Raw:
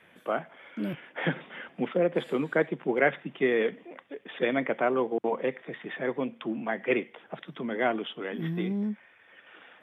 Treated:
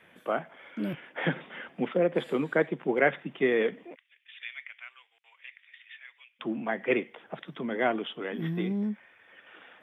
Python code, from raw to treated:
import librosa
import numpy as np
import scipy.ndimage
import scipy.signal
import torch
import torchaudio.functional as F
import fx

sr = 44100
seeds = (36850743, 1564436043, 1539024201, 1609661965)

y = fx.ladder_highpass(x, sr, hz=2000.0, resonance_pct=40, at=(3.94, 6.39), fade=0.02)